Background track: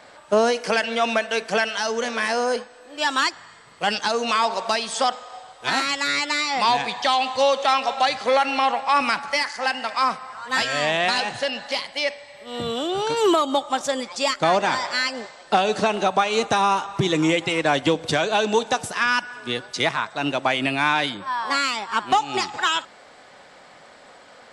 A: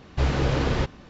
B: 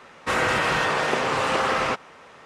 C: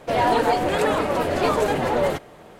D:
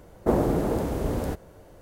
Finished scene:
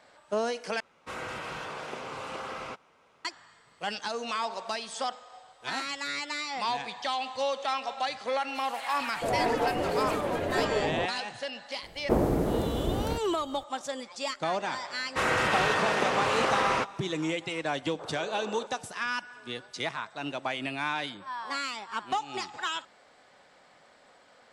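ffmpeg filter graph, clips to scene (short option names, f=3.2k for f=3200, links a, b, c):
-filter_complex "[2:a]asplit=2[a][b];[0:a]volume=-11dB[c];[a]bandreject=f=1.8k:w=8.2[d];[3:a]acrossover=split=1200|4100[e][f][g];[f]adelay=200[h];[e]adelay=670[i];[i][h][g]amix=inputs=3:normalize=0[j];[1:a]asuperpass=centerf=780:order=8:qfactor=0.72[k];[c]asplit=2[l][m];[l]atrim=end=0.804[n];[d]atrim=end=2.45,asetpts=PTS-STARTPTS,volume=-15dB[o];[m]atrim=start=3.246[p];[j]atrim=end=2.59,asetpts=PTS-STARTPTS,volume=-7dB,afade=t=in:d=0.004:c=hsin,afade=t=out:st=2.586:d=0.004:c=hsin,adelay=8470[q];[4:a]atrim=end=1.81,asetpts=PTS-STARTPTS,volume=-2.5dB,afade=t=in:d=0.004:c=hsin,afade=t=out:st=1.806:d=0.004:c=hsin,adelay=11830[r];[b]atrim=end=2.45,asetpts=PTS-STARTPTS,volume=-4dB,afade=t=in:d=0.004:c=hsin,afade=t=out:st=2.446:d=0.004:c=hsin,adelay=14890[s];[k]atrim=end=1.09,asetpts=PTS-STARTPTS,volume=-11dB,afade=t=in:d=0.004:c=hsin,afade=t=out:st=1.086:d=0.004:c=hsin,adelay=17810[t];[n][o]acrossfade=d=0.004:c1=hsin:c2=hsin[u];[u][p]acrossfade=d=0.004:c1=hsin:c2=hsin[v];[v][q][r][s][t]amix=inputs=5:normalize=0"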